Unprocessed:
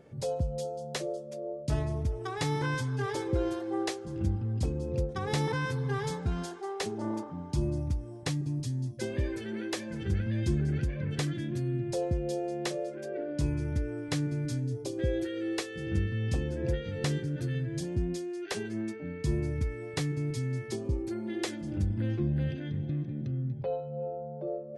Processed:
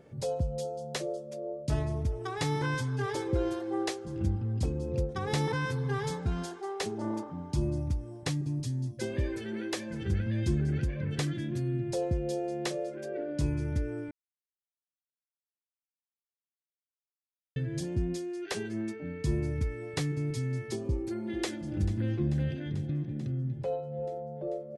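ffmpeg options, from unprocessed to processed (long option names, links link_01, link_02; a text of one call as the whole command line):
ffmpeg -i in.wav -filter_complex "[0:a]asplit=2[link_01][link_02];[link_02]afade=type=in:start_time=20.88:duration=0.01,afade=type=out:start_time=21.73:duration=0.01,aecho=0:1:440|880|1320|1760|2200|2640|3080|3520|3960|4400:0.149624|0.112218|0.0841633|0.0631224|0.0473418|0.0355064|0.0266298|0.0199723|0.0149793|0.0112344[link_03];[link_01][link_03]amix=inputs=2:normalize=0,asplit=3[link_04][link_05][link_06];[link_04]atrim=end=14.11,asetpts=PTS-STARTPTS,afade=type=out:start_time=14.106:duration=0.004:curve=hsin[link_07];[link_05]atrim=start=14.11:end=17.56,asetpts=PTS-STARTPTS,volume=0[link_08];[link_06]atrim=start=17.56,asetpts=PTS-STARTPTS,afade=type=in:duration=0.004:curve=hsin[link_09];[link_07][link_08][link_09]concat=n=3:v=0:a=1" out.wav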